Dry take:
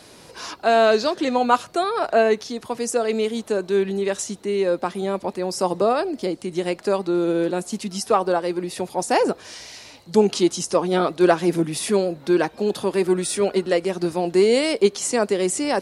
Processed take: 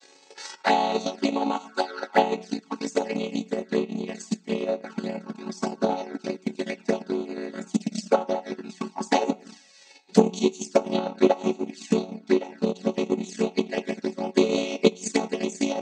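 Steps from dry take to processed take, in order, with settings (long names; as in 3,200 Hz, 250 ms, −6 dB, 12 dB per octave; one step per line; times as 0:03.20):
channel vocoder with a chord as carrier minor triad, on F#3
convolution reverb RT60 0.80 s, pre-delay 4 ms, DRR 3 dB
flanger swept by the level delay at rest 2.6 ms, full sweep at −17 dBFS
transient designer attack +11 dB, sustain −9 dB
spectral tilt +4.5 dB per octave
level −2 dB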